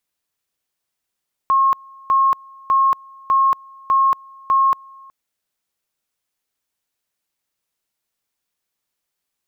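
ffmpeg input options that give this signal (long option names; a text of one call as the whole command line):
ffmpeg -f lavfi -i "aevalsrc='pow(10,(-11.5-27.5*gte(mod(t,0.6),0.23))/20)*sin(2*PI*1080*t)':duration=3.6:sample_rate=44100" out.wav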